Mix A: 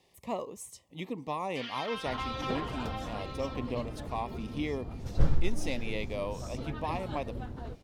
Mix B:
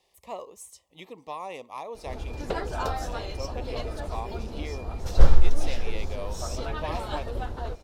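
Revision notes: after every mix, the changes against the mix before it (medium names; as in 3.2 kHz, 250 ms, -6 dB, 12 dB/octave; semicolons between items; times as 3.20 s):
first sound: muted; second sound +11.5 dB; master: add ten-band graphic EQ 125 Hz -12 dB, 250 Hz -10 dB, 2 kHz -3 dB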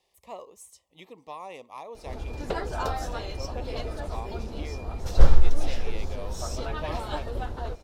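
speech -3.5 dB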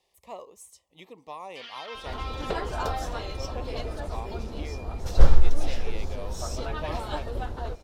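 first sound: unmuted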